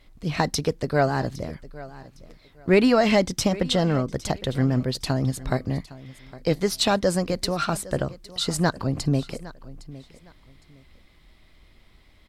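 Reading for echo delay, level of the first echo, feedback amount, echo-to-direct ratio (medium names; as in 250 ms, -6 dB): 810 ms, -18.5 dB, 25%, -18.0 dB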